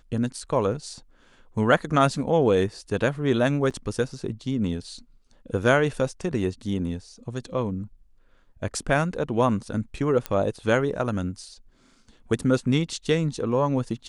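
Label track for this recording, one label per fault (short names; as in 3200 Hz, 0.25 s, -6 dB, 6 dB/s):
3.700000	3.710000	gap 6.6 ms
10.260000	10.260000	pop -12 dBFS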